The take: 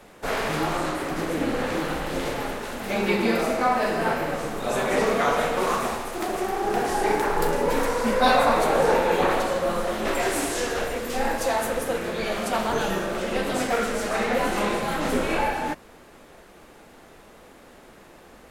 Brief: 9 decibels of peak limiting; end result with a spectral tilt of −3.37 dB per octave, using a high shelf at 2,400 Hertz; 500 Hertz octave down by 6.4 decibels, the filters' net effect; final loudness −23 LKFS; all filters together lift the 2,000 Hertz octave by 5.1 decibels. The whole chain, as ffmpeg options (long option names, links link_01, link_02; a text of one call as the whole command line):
ffmpeg -i in.wav -af "equalizer=frequency=500:width_type=o:gain=-8.5,equalizer=frequency=2000:width_type=o:gain=4,highshelf=frequency=2400:gain=6.5,volume=2dB,alimiter=limit=-12.5dB:level=0:latency=1" out.wav